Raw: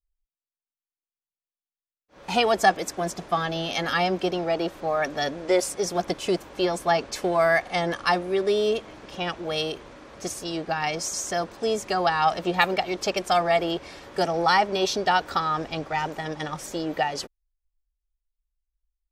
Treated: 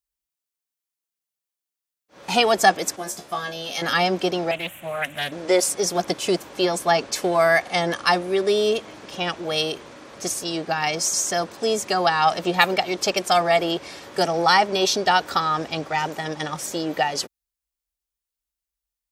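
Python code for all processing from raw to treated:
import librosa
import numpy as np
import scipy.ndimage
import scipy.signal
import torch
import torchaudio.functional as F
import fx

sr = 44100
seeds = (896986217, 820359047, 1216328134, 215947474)

y = fx.chain(x, sr, fx.high_shelf(hz=8200.0, db=11.0),
    fx.comb_fb(f0_hz=71.0, decay_s=0.19, harmonics='all', damping=0.0, mix_pct=100), at=(2.96, 3.82))
y = fx.chain(y, sr, fx.curve_eq(hz=(150.0, 410.0, 630.0, 1100.0, 2900.0, 4900.0, 7800.0, 14000.0), db=(0, -17, -6, -10, 8, -24, 4, 12)),
    fx.doppler_dist(depth_ms=0.32), at=(4.51, 5.32))
y = scipy.signal.sosfilt(scipy.signal.butter(2, 100.0, 'highpass', fs=sr, output='sos'), y)
y = fx.high_shelf(y, sr, hz=4200.0, db=7.0)
y = y * librosa.db_to_amplitude(2.5)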